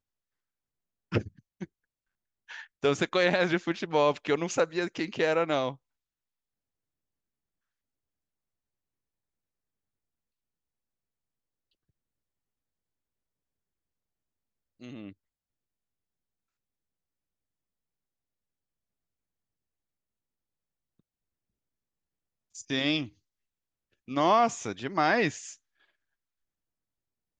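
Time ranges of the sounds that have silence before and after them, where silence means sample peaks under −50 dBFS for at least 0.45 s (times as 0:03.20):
0:01.12–0:01.65
0:02.49–0:05.76
0:14.81–0:15.13
0:22.55–0:23.09
0:24.08–0:25.56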